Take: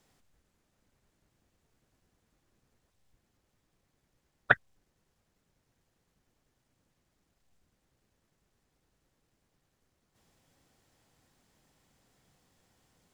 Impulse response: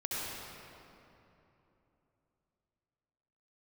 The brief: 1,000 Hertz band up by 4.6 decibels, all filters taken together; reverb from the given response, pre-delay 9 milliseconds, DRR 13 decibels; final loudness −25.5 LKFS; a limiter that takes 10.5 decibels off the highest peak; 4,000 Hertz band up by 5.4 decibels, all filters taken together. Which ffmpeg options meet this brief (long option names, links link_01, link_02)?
-filter_complex "[0:a]equalizer=frequency=1000:width_type=o:gain=7,equalizer=frequency=4000:width_type=o:gain=6,alimiter=limit=-12dB:level=0:latency=1,asplit=2[link_01][link_02];[1:a]atrim=start_sample=2205,adelay=9[link_03];[link_02][link_03]afir=irnorm=-1:irlink=0,volume=-18dB[link_04];[link_01][link_04]amix=inputs=2:normalize=0,volume=10.5dB"